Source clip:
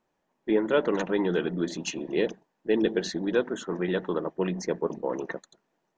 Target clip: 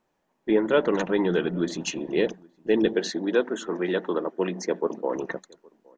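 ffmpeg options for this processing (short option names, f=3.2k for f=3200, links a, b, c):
-filter_complex "[0:a]asettb=1/sr,asplit=3[a][b][c];[a]atrim=end=2.934[d];[b]atrim=start=2.93:end=5.16,asetpts=PTS-STARTPTS,afade=t=in:d=0.004:c=qsin,afade=t=out:st=2.226:d=0.004:c=qsin,highpass=f=210:w=0.5412,highpass=f=210:w=1.3066[e];[c]atrim=start=5.156[f];[d][e]acrossfade=d=0.004:c1=hsin:c2=qsin[g];[g][f]acrossfade=d=0.004:c1=qsin:c2=hsin,asplit=2[h][i];[i]adelay=816.3,volume=-27dB,highshelf=f=4k:g=-18.4[j];[h][j]amix=inputs=2:normalize=0,volume=2.5dB"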